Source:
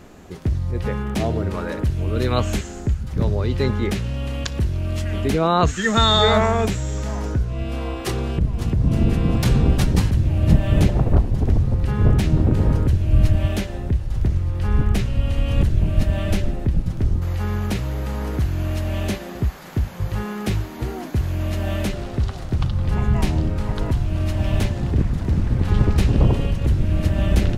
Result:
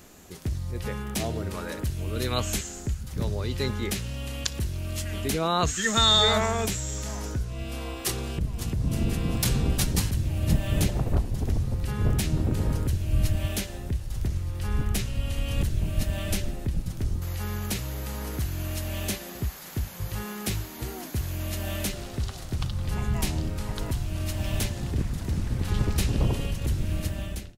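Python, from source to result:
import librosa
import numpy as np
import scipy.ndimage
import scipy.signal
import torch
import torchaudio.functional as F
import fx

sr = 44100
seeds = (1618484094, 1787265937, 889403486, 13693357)

y = fx.fade_out_tail(x, sr, length_s=0.65)
y = F.preemphasis(torch.from_numpy(y), 0.8).numpy()
y = y * librosa.db_to_amplitude(5.5)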